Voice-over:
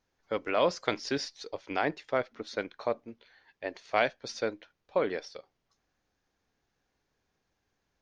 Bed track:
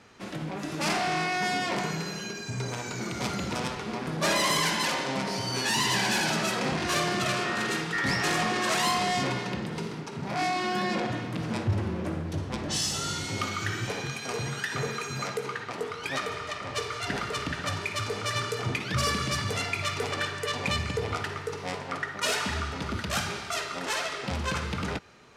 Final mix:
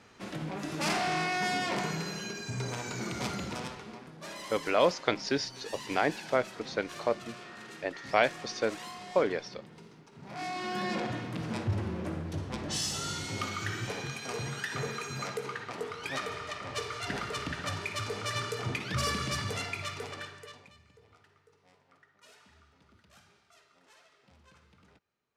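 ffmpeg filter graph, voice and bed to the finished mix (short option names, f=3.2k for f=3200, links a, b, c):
-filter_complex "[0:a]adelay=4200,volume=1.5dB[a];[1:a]volume=11.5dB,afade=t=out:st=3.13:d=0.99:silence=0.16788,afade=t=in:st=10.11:d=0.8:silence=0.199526,afade=t=out:st=19.43:d=1.27:silence=0.0473151[b];[a][b]amix=inputs=2:normalize=0"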